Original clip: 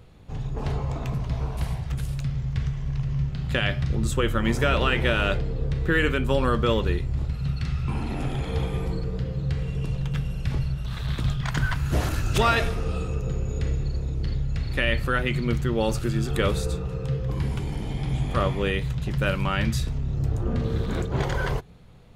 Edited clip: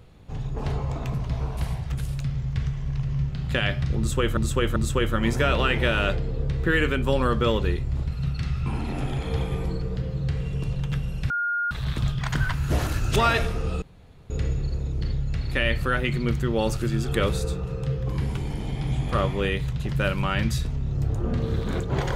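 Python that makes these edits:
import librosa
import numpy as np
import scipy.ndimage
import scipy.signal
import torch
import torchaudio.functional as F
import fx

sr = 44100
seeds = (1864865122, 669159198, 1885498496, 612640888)

y = fx.edit(x, sr, fx.repeat(start_s=3.98, length_s=0.39, count=3),
    fx.bleep(start_s=10.52, length_s=0.41, hz=1420.0, db=-22.5),
    fx.room_tone_fill(start_s=13.04, length_s=0.48), tone=tone)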